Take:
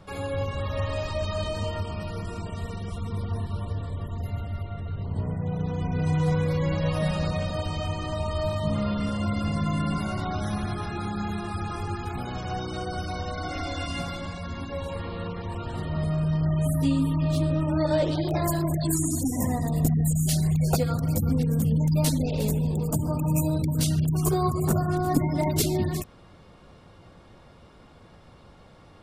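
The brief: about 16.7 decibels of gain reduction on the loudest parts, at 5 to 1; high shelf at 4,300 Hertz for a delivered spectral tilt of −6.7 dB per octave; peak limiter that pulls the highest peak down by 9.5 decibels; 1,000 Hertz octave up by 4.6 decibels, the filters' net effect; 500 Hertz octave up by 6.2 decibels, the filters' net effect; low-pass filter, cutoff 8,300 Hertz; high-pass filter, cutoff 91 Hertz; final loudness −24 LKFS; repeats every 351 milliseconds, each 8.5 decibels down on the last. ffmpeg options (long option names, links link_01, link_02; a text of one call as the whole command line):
ffmpeg -i in.wav -af "highpass=91,lowpass=8300,equalizer=frequency=500:width_type=o:gain=7,equalizer=frequency=1000:width_type=o:gain=3.5,highshelf=frequency=4300:gain=-4,acompressor=threshold=-34dB:ratio=5,alimiter=level_in=8dB:limit=-24dB:level=0:latency=1,volume=-8dB,aecho=1:1:351|702|1053|1404:0.376|0.143|0.0543|0.0206,volume=16dB" out.wav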